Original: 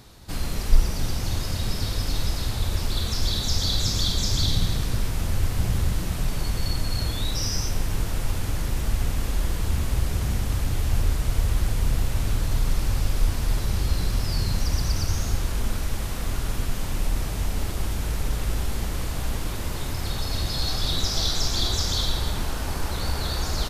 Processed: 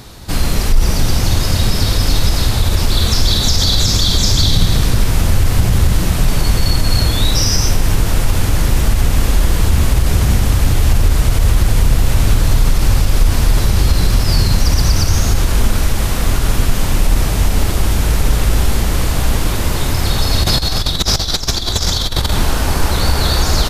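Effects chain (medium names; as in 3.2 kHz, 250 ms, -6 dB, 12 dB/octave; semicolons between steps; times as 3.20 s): 20.43–22.32 s: compressor with a negative ratio -27 dBFS, ratio -0.5; loudness maximiser +14.5 dB; trim -1.5 dB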